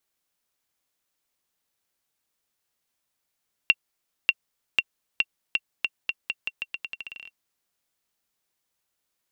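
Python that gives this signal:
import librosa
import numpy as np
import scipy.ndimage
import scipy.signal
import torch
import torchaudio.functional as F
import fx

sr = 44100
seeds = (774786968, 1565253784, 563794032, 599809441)

y = fx.bouncing_ball(sr, first_gap_s=0.59, ratio=0.84, hz=2740.0, decay_ms=43.0, level_db=-4.5)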